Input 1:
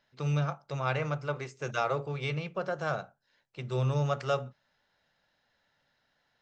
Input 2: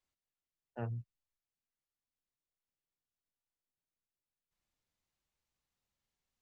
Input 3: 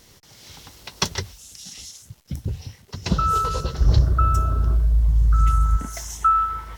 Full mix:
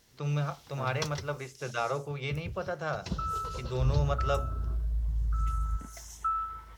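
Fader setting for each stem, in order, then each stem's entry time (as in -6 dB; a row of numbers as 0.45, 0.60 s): -1.5, -1.5, -13.0 dB; 0.00, 0.00, 0.00 s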